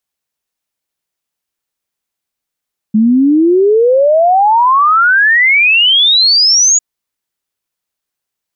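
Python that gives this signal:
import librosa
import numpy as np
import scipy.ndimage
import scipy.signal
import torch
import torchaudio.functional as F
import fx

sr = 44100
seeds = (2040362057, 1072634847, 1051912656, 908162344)

y = fx.ess(sr, length_s=3.85, from_hz=210.0, to_hz=6900.0, level_db=-5.5)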